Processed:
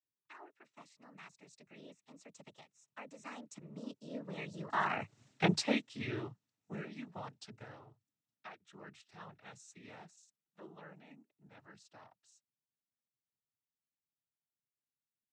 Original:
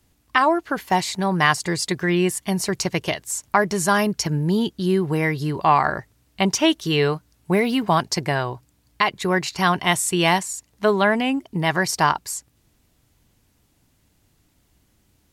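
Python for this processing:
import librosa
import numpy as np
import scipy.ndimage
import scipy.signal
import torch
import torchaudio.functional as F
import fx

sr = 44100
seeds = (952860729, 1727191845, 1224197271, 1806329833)

y = fx.doppler_pass(x, sr, speed_mps=56, closest_m=4.4, pass_at_s=5.22)
y = fx.noise_vocoder(y, sr, seeds[0], bands=12)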